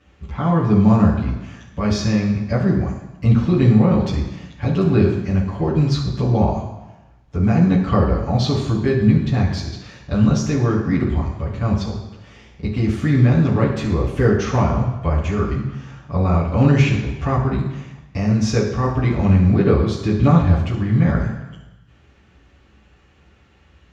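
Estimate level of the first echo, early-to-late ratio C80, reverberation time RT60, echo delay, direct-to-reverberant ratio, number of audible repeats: none, 7.5 dB, 1.0 s, none, -7.0 dB, none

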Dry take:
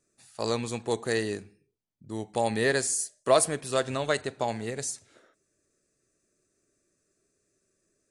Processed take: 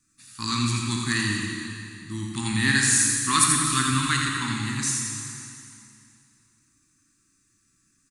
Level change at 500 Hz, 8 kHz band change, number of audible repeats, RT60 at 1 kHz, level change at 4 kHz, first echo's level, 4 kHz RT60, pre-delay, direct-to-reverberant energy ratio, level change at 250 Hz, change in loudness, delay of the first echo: -16.5 dB, +10.0 dB, 1, 2.6 s, +9.5 dB, -5.5 dB, 2.4 s, 8 ms, -2.0 dB, +7.0 dB, +5.5 dB, 84 ms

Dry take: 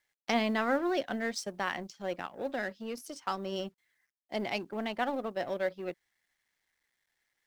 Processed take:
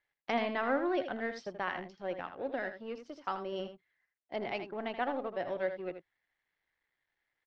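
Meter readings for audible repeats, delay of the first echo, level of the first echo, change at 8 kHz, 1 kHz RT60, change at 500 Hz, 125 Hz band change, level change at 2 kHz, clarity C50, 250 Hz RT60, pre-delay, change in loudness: 1, 80 ms, -9.5 dB, under -15 dB, none, -1.0 dB, -5.5 dB, -2.5 dB, none, none, none, -2.5 dB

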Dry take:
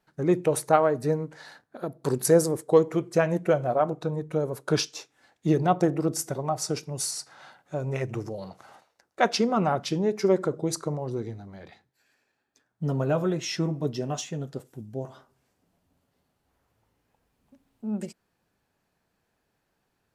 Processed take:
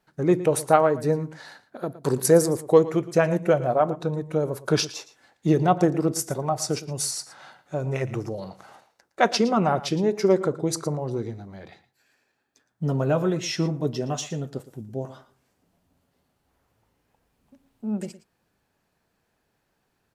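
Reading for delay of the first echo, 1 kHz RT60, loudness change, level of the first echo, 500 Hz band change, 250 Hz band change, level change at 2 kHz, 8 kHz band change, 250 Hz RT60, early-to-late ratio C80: 0.114 s, none, +2.5 dB, -16.5 dB, +2.5 dB, +2.5 dB, +2.5 dB, +2.5 dB, none, none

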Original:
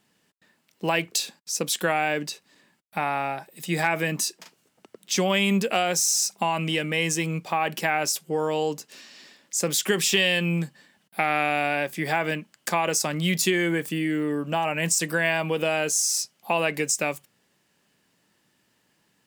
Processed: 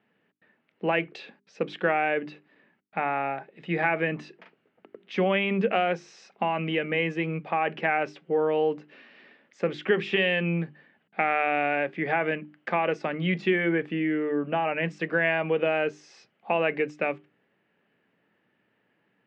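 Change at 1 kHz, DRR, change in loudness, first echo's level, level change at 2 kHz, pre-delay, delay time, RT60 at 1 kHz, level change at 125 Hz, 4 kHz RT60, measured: -1.5 dB, none, -2.5 dB, none, -1.5 dB, none, none, none, -3.5 dB, none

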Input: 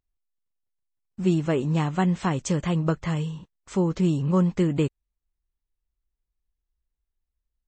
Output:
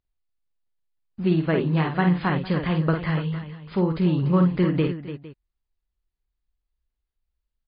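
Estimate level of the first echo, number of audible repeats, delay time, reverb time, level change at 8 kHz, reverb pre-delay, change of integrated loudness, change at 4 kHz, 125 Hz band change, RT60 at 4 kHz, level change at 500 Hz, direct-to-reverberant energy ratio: -5.5 dB, 3, 50 ms, none, under -40 dB, none, +1.5 dB, +2.0 dB, +2.0 dB, none, +1.5 dB, none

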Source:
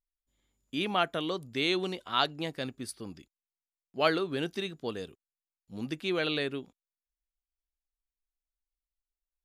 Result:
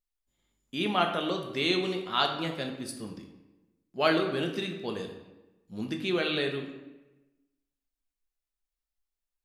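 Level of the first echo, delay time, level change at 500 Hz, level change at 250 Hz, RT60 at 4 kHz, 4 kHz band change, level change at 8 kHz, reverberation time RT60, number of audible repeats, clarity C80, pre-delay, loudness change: none, none, +2.0 dB, +3.0 dB, 0.75 s, +2.0 dB, +1.0 dB, 1.1 s, none, 9.0 dB, 5 ms, +2.0 dB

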